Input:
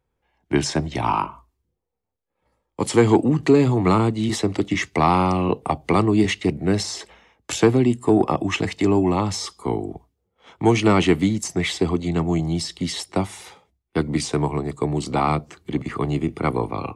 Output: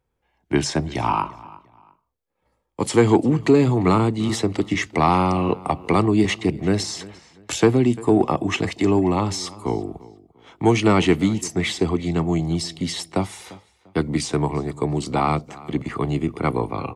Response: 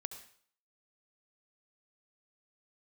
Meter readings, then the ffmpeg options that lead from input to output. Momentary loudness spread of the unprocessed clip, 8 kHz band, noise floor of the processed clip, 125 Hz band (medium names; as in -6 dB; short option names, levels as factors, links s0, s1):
10 LU, 0.0 dB, -72 dBFS, 0.0 dB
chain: -filter_complex "[0:a]asplit=2[s0][s1];[s1]adelay=346,lowpass=f=4500:p=1,volume=0.1,asplit=2[s2][s3];[s3]adelay=346,lowpass=f=4500:p=1,volume=0.29[s4];[s0][s2][s4]amix=inputs=3:normalize=0"